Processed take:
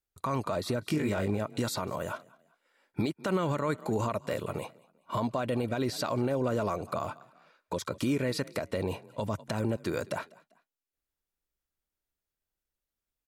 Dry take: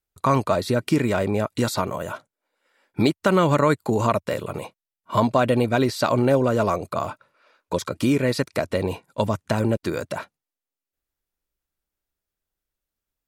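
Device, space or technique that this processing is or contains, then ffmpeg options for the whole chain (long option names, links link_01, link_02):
stacked limiters: -filter_complex "[0:a]asplit=3[link_01][link_02][link_03];[link_01]afade=type=out:start_time=0.81:duration=0.02[link_04];[link_02]asplit=2[link_05][link_06];[link_06]adelay=20,volume=-3dB[link_07];[link_05][link_07]amix=inputs=2:normalize=0,afade=type=in:start_time=0.81:duration=0.02,afade=type=out:start_time=1.38:duration=0.02[link_08];[link_03]afade=type=in:start_time=1.38:duration=0.02[link_09];[link_04][link_08][link_09]amix=inputs=3:normalize=0,asplit=3[link_10][link_11][link_12];[link_11]adelay=196,afreqshift=31,volume=-24dB[link_13];[link_12]adelay=392,afreqshift=62,volume=-32.4dB[link_14];[link_10][link_13][link_14]amix=inputs=3:normalize=0,alimiter=limit=-11.5dB:level=0:latency=1:release=254,alimiter=limit=-15.5dB:level=0:latency=1:release=53,volume=-4.5dB"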